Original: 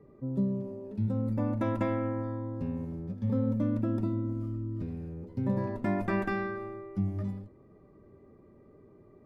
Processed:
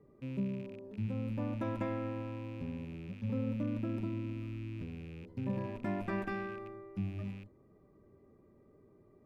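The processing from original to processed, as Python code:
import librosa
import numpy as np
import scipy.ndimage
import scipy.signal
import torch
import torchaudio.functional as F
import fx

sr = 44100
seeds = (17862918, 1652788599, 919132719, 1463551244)

y = fx.rattle_buzz(x, sr, strikes_db=-42.0, level_db=-39.0)
y = y * librosa.db_to_amplitude(-6.5)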